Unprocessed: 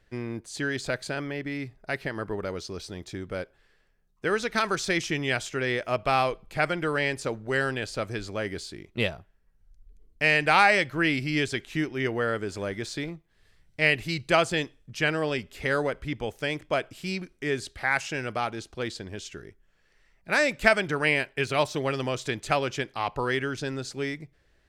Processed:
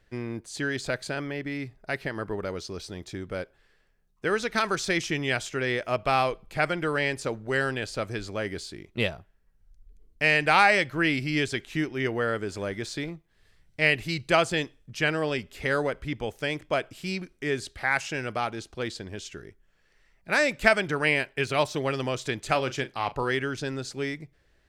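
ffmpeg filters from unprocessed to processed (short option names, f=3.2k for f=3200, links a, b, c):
-filter_complex "[0:a]asettb=1/sr,asplit=3[a][b][c];[a]atrim=end=22.454[d];[b]atrim=start=22.45:end=23.31,asetpts=PTS-STARTPTS,afade=t=in:d=0.004:c=qsin,afade=t=out:st=0.856:d=0.004:c=qsin,asplit=2[e][f];[f]adelay=38,volume=-13.5dB[g];[e][g]amix=inputs=2:normalize=0,atrim=end_sample=37926[h];[c]atrim=start=23.306[i];[d][h]acrossfade=d=0.004:c1=hsin:c2=qsin[j];[j][i]acrossfade=d=0.004:c1=qsin:c2=hsin"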